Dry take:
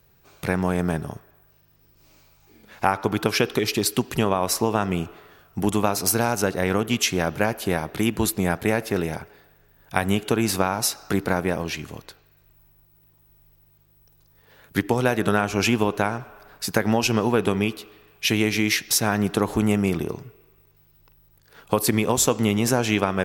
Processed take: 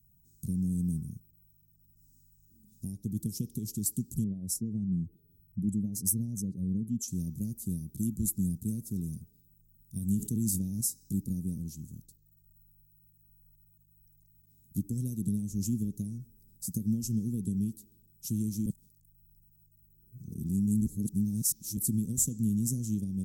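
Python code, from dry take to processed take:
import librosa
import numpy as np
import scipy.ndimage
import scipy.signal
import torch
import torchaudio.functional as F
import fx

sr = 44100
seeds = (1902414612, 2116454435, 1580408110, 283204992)

y = fx.spec_expand(x, sr, power=1.6, at=(4.24, 7.08))
y = fx.sustainer(y, sr, db_per_s=26.0, at=(10.17, 10.81))
y = fx.edit(y, sr, fx.reverse_span(start_s=18.66, length_s=3.11), tone=tone)
y = scipy.signal.sosfilt(scipy.signal.cheby1(3, 1.0, [210.0, 7400.0], 'bandstop', fs=sr, output='sos'), y)
y = y * 10.0 ** (-4.5 / 20.0)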